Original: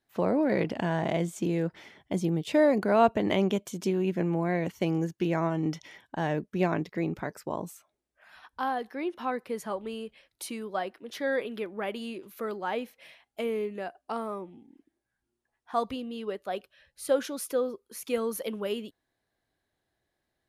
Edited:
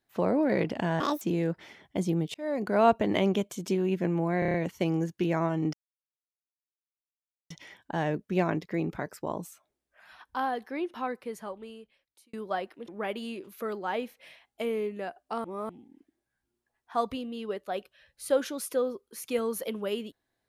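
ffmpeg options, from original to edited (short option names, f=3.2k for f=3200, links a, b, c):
-filter_complex "[0:a]asplit=14[a][b][c][d][e][f][g][h][i][j][k][l][m][n];[a]atrim=end=1.004[o];[b]atrim=start=1:end=1.37,asetpts=PTS-STARTPTS,asetrate=76734,aresample=44100[p];[c]atrim=start=1.366:end=2.5,asetpts=PTS-STARTPTS,afade=t=out:st=1.13:d=0.004:c=hsin[q];[d]atrim=start=2.5:end=4.582,asetpts=PTS-STARTPTS,afade=t=in:d=0.46[r];[e]atrim=start=4.548:end=4.582[s];[f]atrim=start=4.548:end=4.582[t];[g]atrim=start=4.548:end=4.582[u];[h]atrim=start=4.548:end=4.582[v];[i]atrim=start=4.548:end=5.74,asetpts=PTS-STARTPTS,afade=t=out:st=1.188:d=0.004:c=hsin,apad=pad_dur=1.77[w];[j]atrim=start=5.74:end=10.57,asetpts=PTS-STARTPTS,afade=t=in:d=0.004:c=hsin,afade=t=out:st=3.27:d=1.56[x];[k]atrim=start=10.57:end=11.122,asetpts=PTS-STARTPTS,afade=t=in:d=0.004:c=hsin[y];[l]atrim=start=11.668:end=14.232[z];[m]atrim=start=14.228:end=14.482,asetpts=PTS-STARTPTS,areverse[aa];[n]atrim=start=14.478[ab];[o][p]acrossfade=d=0.004:c1=hsin:c2=hsin[ac];[q][r]concat=n=2:v=0:a=1[ad];[ac][ad]acrossfade=d=0.004:c1=hsin:c2=hsin[ae];[ae][s]acrossfade=d=0.004:c1=hsin:c2=hsin[af];[af][t]acrossfade=d=0.004:c1=hsin:c2=hsin[ag];[ag][u]acrossfade=d=0.004:c1=hsin:c2=hsin[ah];[ah][v]acrossfade=d=0.004:c1=hsin:c2=hsin[ai];[w][x][y]concat=n=3:v=0:a=1[aj];[ai][aj]acrossfade=d=0.004:c1=hsin:c2=hsin[ak];[ak][z]acrossfade=d=0.004:c1=hsin:c2=hsin[al];[al][aa]acrossfade=d=0.004:c1=hsin:c2=hsin[am];[am][ab]acrossfade=d=0.004:c1=hsin:c2=hsin"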